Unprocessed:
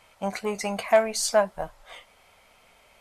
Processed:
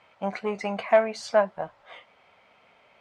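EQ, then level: band-pass 120–3000 Hz; 0.0 dB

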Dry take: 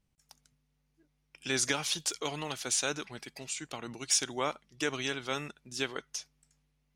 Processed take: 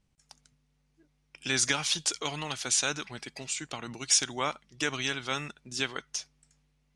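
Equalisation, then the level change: low-pass 9.7 kHz 24 dB/octave; dynamic bell 430 Hz, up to -6 dB, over -46 dBFS, Q 0.88; +4.0 dB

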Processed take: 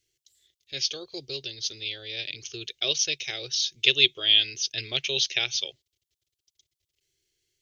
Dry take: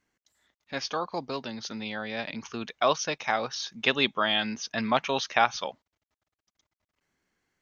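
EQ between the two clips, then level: FFT filter 140 Hz 0 dB, 210 Hz -28 dB, 370 Hz +2 dB, 1 kHz -29 dB, 3.2 kHz +8 dB; dynamic bell 2.4 kHz, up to +4 dB, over -38 dBFS, Q 1.8; 0.0 dB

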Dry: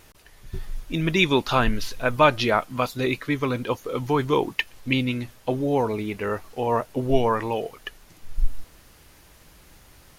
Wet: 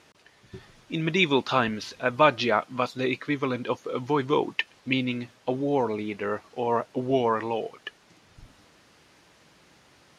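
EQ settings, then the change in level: band-pass 150–6100 Hz; -2.0 dB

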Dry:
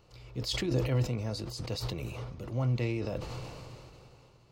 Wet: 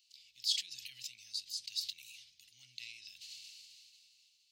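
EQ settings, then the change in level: inverse Chebyshev high-pass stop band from 1.3 kHz, stop band 50 dB; treble shelf 5.9 kHz -6 dB; +5.5 dB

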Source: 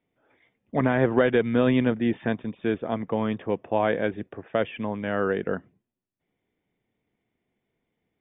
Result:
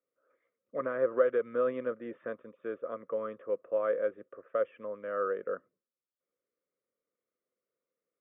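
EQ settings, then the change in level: two resonant band-passes 810 Hz, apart 1.2 oct; distance through air 110 m; 0.0 dB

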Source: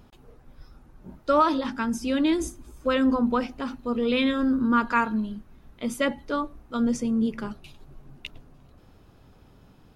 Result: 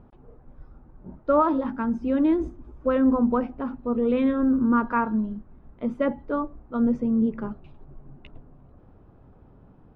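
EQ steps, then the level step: low-pass 1.1 kHz 12 dB/octave; +2.0 dB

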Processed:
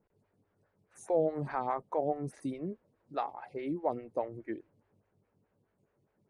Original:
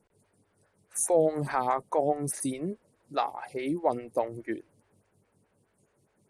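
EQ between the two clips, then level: tape spacing loss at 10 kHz 23 dB; -4.0 dB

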